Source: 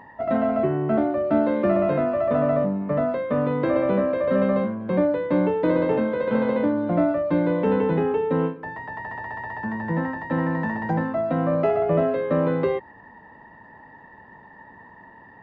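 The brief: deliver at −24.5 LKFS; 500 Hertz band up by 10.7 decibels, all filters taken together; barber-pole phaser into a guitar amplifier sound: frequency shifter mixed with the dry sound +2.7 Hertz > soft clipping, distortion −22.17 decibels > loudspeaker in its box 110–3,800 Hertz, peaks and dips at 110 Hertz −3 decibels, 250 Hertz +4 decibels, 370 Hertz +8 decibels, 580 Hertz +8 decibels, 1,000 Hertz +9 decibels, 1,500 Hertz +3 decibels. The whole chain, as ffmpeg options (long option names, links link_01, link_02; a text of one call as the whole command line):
ffmpeg -i in.wav -filter_complex "[0:a]equalizer=frequency=500:width_type=o:gain=4.5,asplit=2[link_01][link_02];[link_02]afreqshift=2.7[link_03];[link_01][link_03]amix=inputs=2:normalize=1,asoftclip=threshold=-12.5dB,highpass=110,equalizer=frequency=110:width_type=q:width=4:gain=-3,equalizer=frequency=250:width_type=q:width=4:gain=4,equalizer=frequency=370:width_type=q:width=4:gain=8,equalizer=frequency=580:width_type=q:width=4:gain=8,equalizer=frequency=1000:width_type=q:width=4:gain=9,equalizer=frequency=1500:width_type=q:width=4:gain=3,lowpass=frequency=3800:width=0.5412,lowpass=frequency=3800:width=1.3066,volume=-7dB" out.wav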